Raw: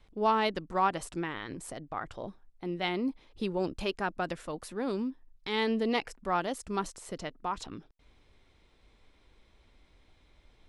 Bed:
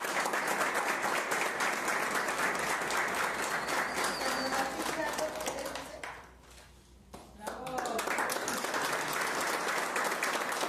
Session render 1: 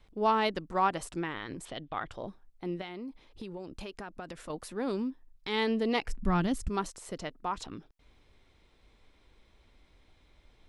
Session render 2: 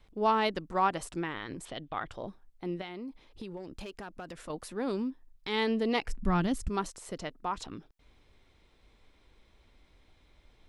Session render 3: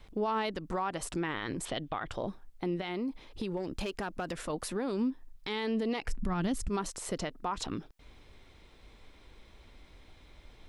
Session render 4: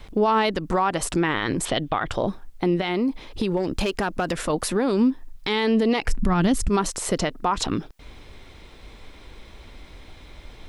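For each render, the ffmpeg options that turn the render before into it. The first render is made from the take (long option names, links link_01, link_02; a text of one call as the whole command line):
ffmpeg -i in.wav -filter_complex "[0:a]asettb=1/sr,asplit=3[link_01][link_02][link_03];[link_01]atrim=end=1.654[link_04];[link_02]atrim=start=1.65:end=2.11,asetpts=PTS-STARTPTS,afade=type=in:duration=0.004:curve=qsin,afade=type=out:start_time=0.456:duration=0.004:curve=qsin,lowpass=frequency=3400:width_type=q:width=4.9[link_05];[link_03]atrim=start=2.106[link_06];[link_04][link_05]acrossfade=duration=0.004:curve1=hsin:curve2=qsin[link_07];[link_07][link_06]acrossfade=duration=0.004:curve1=qsin:curve2=hsin,asettb=1/sr,asplit=3[link_08][link_09][link_10];[link_08]atrim=end=2.814[link_11];[link_09]atrim=start=2.81:end=4.5,asetpts=PTS-STARTPTS,afade=type=in:duration=0.004:curve=qsin,afade=type=out:start_time=1.686:duration=0.004:curve=qsin,acompressor=threshold=-37dB:ratio=10:attack=3.2:release=140:knee=1:detection=peak[link_12];[link_10]atrim=start=4.496[link_13];[link_11][link_12]acrossfade=duration=0.004:curve1=hsin:curve2=qsin[link_14];[link_14][link_13]acrossfade=duration=0.004:curve1=qsin:curve2=hsin,asplit=3[link_15][link_16][link_17];[link_15]afade=type=out:start_time=6.07:duration=0.02[link_18];[link_16]asubboost=boost=10.5:cutoff=180,afade=type=in:start_time=6.07:duration=0.02,afade=type=out:start_time=6.68:duration=0.02[link_19];[link_17]afade=type=in:start_time=6.68:duration=0.02[link_20];[link_18][link_19][link_20]amix=inputs=3:normalize=0" out.wav
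ffmpeg -i in.wav -filter_complex "[0:a]asplit=3[link_01][link_02][link_03];[link_01]afade=type=out:start_time=3.56:duration=0.02[link_04];[link_02]asoftclip=type=hard:threshold=-35.5dB,afade=type=in:start_time=3.56:duration=0.02,afade=type=out:start_time=4.34:duration=0.02[link_05];[link_03]afade=type=in:start_time=4.34:duration=0.02[link_06];[link_04][link_05][link_06]amix=inputs=3:normalize=0" out.wav
ffmpeg -i in.wav -filter_complex "[0:a]asplit=2[link_01][link_02];[link_02]acompressor=threshold=-36dB:ratio=6,volume=2dB[link_03];[link_01][link_03]amix=inputs=2:normalize=0,alimiter=limit=-24dB:level=0:latency=1:release=88" out.wav
ffmpeg -i in.wav -af "volume=11.5dB" out.wav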